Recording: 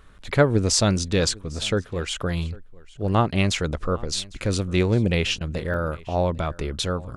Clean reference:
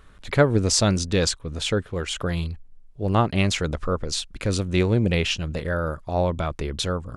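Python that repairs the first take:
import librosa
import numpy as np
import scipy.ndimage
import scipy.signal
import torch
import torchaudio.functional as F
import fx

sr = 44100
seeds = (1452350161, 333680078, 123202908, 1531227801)

y = fx.fix_interpolate(x, sr, at_s=(5.74,), length_ms=2.3)
y = fx.fix_interpolate(y, sr, at_s=(5.39,), length_ms=16.0)
y = fx.fix_echo_inverse(y, sr, delay_ms=802, level_db=-23.0)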